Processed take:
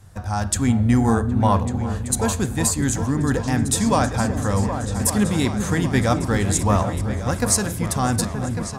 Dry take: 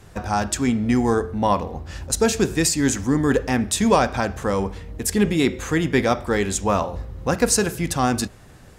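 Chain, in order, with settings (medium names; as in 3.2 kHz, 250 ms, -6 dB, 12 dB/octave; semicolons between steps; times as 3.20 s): fifteen-band graphic EQ 100 Hz +10 dB, 400 Hz -7 dB, 2.5 kHz -5 dB, 10 kHz +6 dB; delay with an opening low-pass 383 ms, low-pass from 400 Hz, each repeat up 2 oct, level -6 dB; level rider; 0.55–2.93 s: peaking EQ 5.3 kHz -10 dB 0.23 oct; trim -5 dB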